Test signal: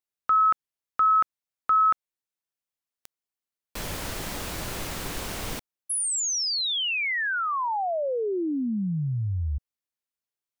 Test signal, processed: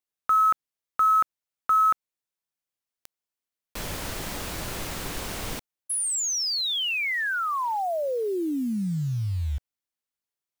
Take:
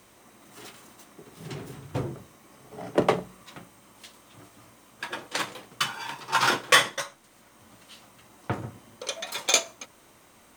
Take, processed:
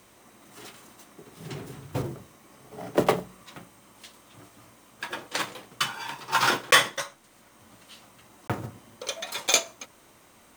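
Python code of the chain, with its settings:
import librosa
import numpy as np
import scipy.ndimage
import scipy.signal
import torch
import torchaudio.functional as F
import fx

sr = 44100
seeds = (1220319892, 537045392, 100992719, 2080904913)

y = fx.block_float(x, sr, bits=5)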